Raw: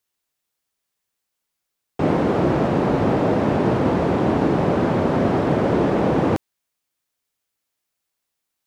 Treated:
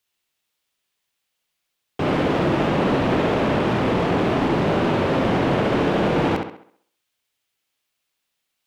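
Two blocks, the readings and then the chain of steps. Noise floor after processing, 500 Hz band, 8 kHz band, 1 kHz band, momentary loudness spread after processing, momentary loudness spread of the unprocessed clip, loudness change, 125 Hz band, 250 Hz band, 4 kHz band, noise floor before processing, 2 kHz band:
−78 dBFS, −1.0 dB, can't be measured, +0.5 dB, 4 LU, 2 LU, −1.0 dB, −1.5 dB, −1.5 dB, +7.0 dB, −80 dBFS, +4.0 dB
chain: hard clipping −18.5 dBFS, distortion −10 dB
parametric band 3,000 Hz +7 dB 1.1 octaves
on a send: tape delay 65 ms, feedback 46%, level −3 dB, low-pass 4,800 Hz

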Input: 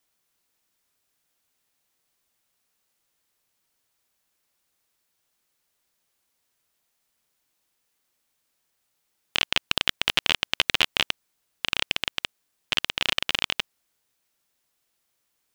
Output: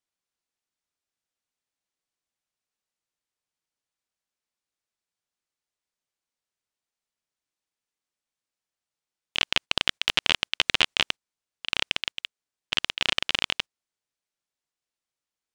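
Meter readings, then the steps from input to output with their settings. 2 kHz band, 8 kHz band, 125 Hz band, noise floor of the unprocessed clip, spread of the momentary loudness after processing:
−0.5 dB, −1.5 dB, −1.0 dB, −76 dBFS, 10 LU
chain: noise gate −33 dBFS, range −13 dB
Savitzky-Golay smoothing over 9 samples

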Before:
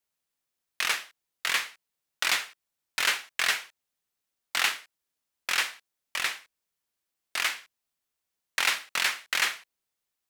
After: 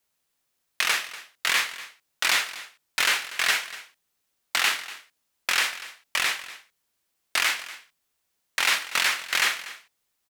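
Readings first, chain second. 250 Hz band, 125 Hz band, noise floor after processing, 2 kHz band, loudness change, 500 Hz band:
+4.0 dB, can't be measured, −77 dBFS, +4.0 dB, +3.5 dB, +4.0 dB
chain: brickwall limiter −18.5 dBFS, peak gain reduction 7.5 dB
single-tap delay 241 ms −16.5 dB
level +8 dB

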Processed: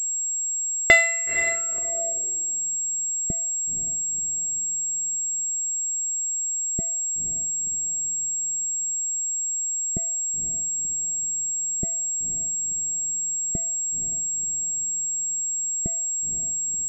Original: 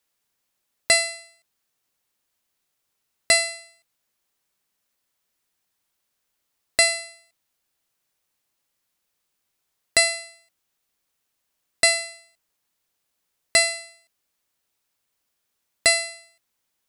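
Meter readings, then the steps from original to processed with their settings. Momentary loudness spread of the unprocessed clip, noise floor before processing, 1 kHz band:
16 LU, −77 dBFS, can't be measured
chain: low-pass that shuts in the quiet parts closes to 1,800 Hz, open at −17 dBFS
in parallel at +1.5 dB: downward compressor, threshold −30 dBFS, peak gain reduction 15.5 dB
on the sum: low-shelf EQ 140 Hz +8.5 dB
on a send: feedback delay with all-pass diffusion 508 ms, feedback 56%, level −8 dB
on the sum: low-pass filter sweep 2,100 Hz → 190 Hz, 0:01.43–0:02.70
parametric band 370 Hz +10 dB 0.31 octaves
switching amplifier with a slow clock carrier 7,600 Hz
level −1 dB

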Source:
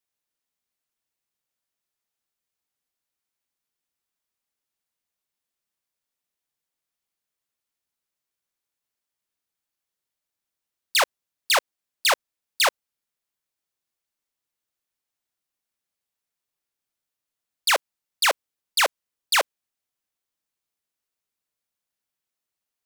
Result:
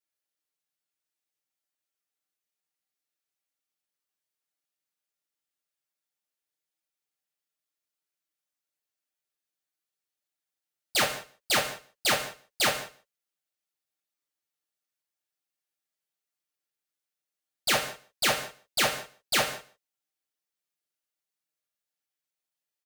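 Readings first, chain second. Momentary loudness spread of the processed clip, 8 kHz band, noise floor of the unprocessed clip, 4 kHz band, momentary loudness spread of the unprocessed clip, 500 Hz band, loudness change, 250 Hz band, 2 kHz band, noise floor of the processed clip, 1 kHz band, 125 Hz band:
12 LU, −3.5 dB, below −85 dBFS, −4.0 dB, 4 LU, −4.0 dB, −4.5 dB, +11.0 dB, −4.5 dB, below −85 dBFS, −6.0 dB, can't be measured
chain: lower of the sound and its delayed copy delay 6.6 ms
high-pass filter 210 Hz 6 dB per octave
notch filter 1,000 Hz, Q 5.8
single-tap delay 147 ms −21.5 dB
reverb whose tail is shaped and stops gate 220 ms falling, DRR 3.5 dB
level −3.5 dB

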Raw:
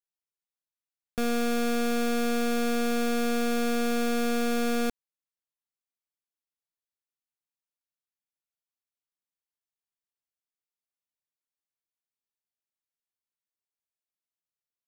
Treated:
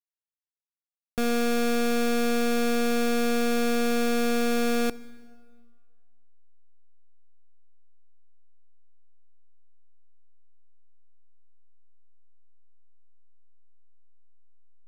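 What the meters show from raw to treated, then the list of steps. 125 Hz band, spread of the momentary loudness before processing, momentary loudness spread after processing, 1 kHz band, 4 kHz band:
can't be measured, 3 LU, 3 LU, +1.5 dB, +2.5 dB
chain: slack as between gear wheels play −43.5 dBFS
dense smooth reverb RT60 1.8 s, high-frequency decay 0.8×, DRR 17.5 dB
level +2.5 dB

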